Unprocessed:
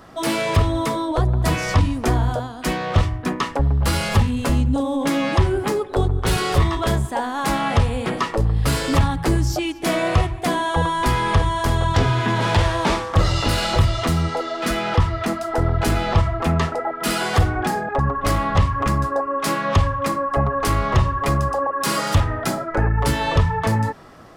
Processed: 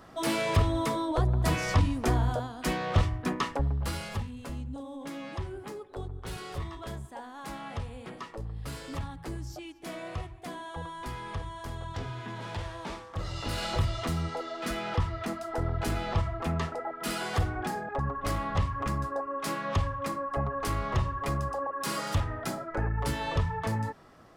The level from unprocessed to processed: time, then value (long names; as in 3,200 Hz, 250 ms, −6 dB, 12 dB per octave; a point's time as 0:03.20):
0:03.46 −7 dB
0:04.31 −19 dB
0:13.18 −19 dB
0:13.64 −11 dB